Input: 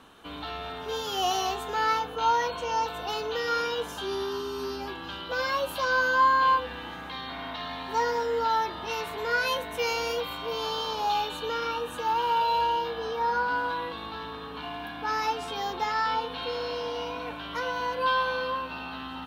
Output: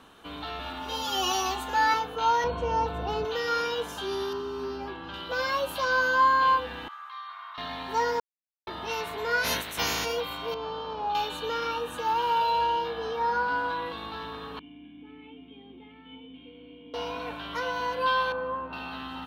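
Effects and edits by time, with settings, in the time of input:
0:00.59–0:01.94: comb filter 3.5 ms, depth 95%
0:02.44–0:03.25: spectral tilt −3.5 dB per octave
0:04.33–0:05.14: low-pass filter 2,000 Hz 6 dB per octave
0:06.88–0:07.58: four-pole ladder high-pass 1,100 Hz, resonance 80%
0:08.20–0:08.67: silence
0:09.43–0:10.04: ceiling on every frequency bin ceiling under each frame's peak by 24 dB
0:10.54–0:11.15: head-to-tape spacing loss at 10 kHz 34 dB
0:12.50–0:13.86: high-shelf EQ 7,200 Hz −5.5 dB
0:14.59–0:16.94: formant resonators in series i
0:18.32–0:18.73: low-pass filter 1,200 Hz

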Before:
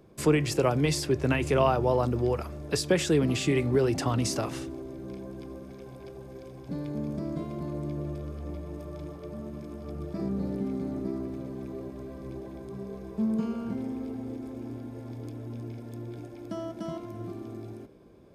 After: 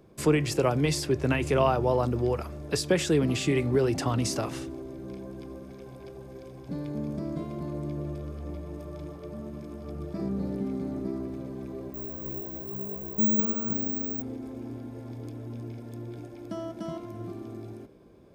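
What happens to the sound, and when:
0:11.94–0:14.22: bad sample-rate conversion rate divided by 2×, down none, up zero stuff

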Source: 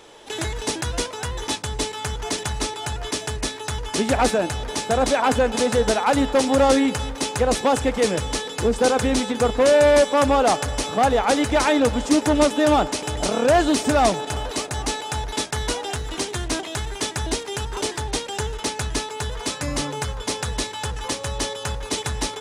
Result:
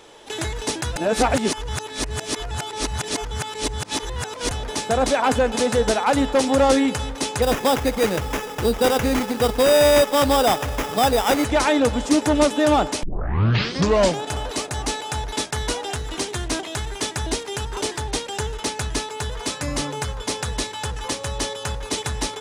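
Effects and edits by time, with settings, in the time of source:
0:00.96–0:04.51: reverse
0:07.42–0:11.45: sample-rate reduction 4,300 Hz
0:13.03: tape start 1.20 s

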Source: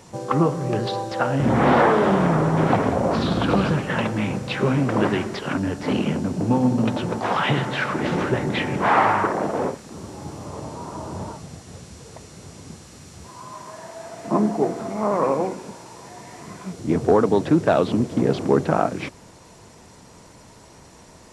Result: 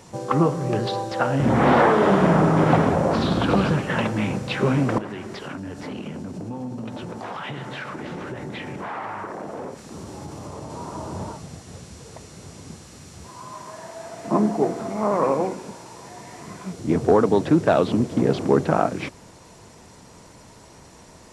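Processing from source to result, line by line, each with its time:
0:01.93–0:02.73: thrown reverb, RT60 2.4 s, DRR 2.5 dB
0:04.98–0:10.70: downward compressor 4 to 1, threshold −31 dBFS

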